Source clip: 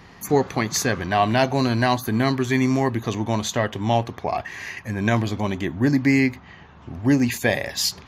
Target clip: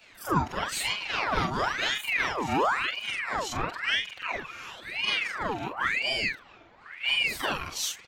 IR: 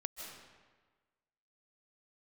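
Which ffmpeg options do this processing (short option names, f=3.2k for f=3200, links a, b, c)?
-af "afftfilt=real='re':imag='-im':win_size=4096:overlap=0.75,aecho=1:1:4.8:0.72,aeval=exprs='val(0)*sin(2*PI*1600*n/s+1600*0.7/0.97*sin(2*PI*0.97*n/s))':c=same,volume=-2.5dB"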